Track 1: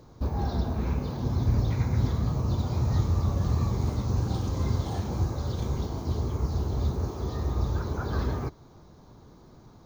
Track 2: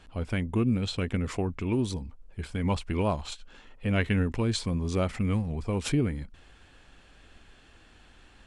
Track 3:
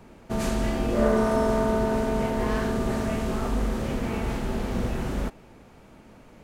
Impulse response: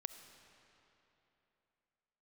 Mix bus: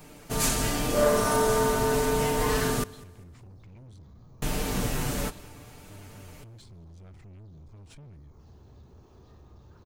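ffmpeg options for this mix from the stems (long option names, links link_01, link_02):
-filter_complex "[0:a]highpass=64,adelay=1950,volume=-19.5dB[link_01];[1:a]lowshelf=frequency=200:width_type=q:width=1.5:gain=9,adelay=2050,volume=-15dB[link_02];[2:a]aecho=1:1:6.8:0.62,flanger=delay=6.4:depth=4:regen=-48:speed=0.44:shape=sinusoidal,crystalizer=i=4:c=0,volume=2dB,asplit=3[link_03][link_04][link_05];[link_03]atrim=end=2.84,asetpts=PTS-STARTPTS,afade=type=out:start_time=2.836:duration=0.004:curve=hsin[link_06];[link_04]atrim=start=2.84:end=4.42,asetpts=PTS-STARTPTS,volume=0[link_07];[link_05]atrim=start=4.42,asetpts=PTS-STARTPTS,afade=type=in:duration=0.004:curve=hsin[link_08];[link_06][link_07][link_08]concat=n=3:v=0:a=1,asplit=2[link_09][link_10];[link_10]volume=-22dB[link_11];[link_01][link_02]amix=inputs=2:normalize=0,asoftclip=type=tanh:threshold=-40dB,acompressor=threshold=-49dB:ratio=3,volume=0dB[link_12];[link_11]aecho=0:1:199|398|597|796|995:1|0.33|0.109|0.0359|0.0119[link_13];[link_09][link_12][link_13]amix=inputs=3:normalize=0"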